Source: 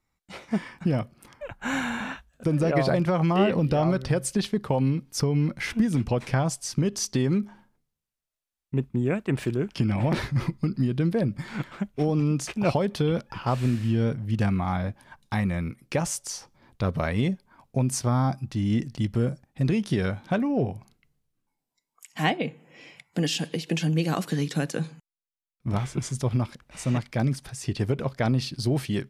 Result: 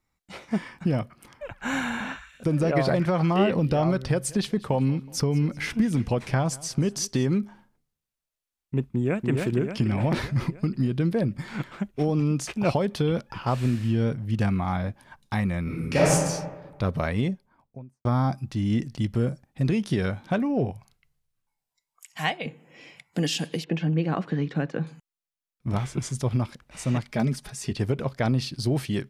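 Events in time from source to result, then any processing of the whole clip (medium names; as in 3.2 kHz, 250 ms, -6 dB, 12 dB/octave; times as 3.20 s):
0.98–3.41 s: repeats whose band climbs or falls 118 ms, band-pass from 1.6 kHz, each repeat 0.7 oct, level -11 dB
4.08–7.27 s: feedback delay 186 ms, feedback 41%, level -21 dB
8.86–9.29 s: echo throw 290 ms, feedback 60%, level -4 dB
15.63–16.12 s: reverb throw, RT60 1.3 s, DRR -7.5 dB
17.04–18.05 s: studio fade out
20.71–22.46 s: peaking EQ 280 Hz -14.5 dB 1.3 oct
23.64–24.87 s: low-pass 2.1 kHz
27.08–27.71 s: comb 4.8 ms, depth 59%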